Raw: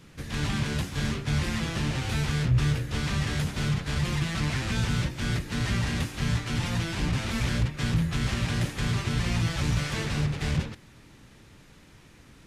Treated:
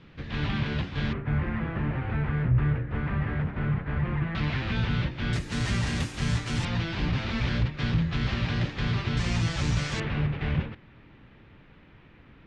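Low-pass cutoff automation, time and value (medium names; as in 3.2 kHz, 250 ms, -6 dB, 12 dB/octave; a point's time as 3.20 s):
low-pass 24 dB/octave
3.8 kHz
from 1.13 s 2 kHz
from 4.35 s 3.8 kHz
from 5.33 s 9.4 kHz
from 6.65 s 4.5 kHz
from 9.17 s 7.6 kHz
from 10.00 s 3 kHz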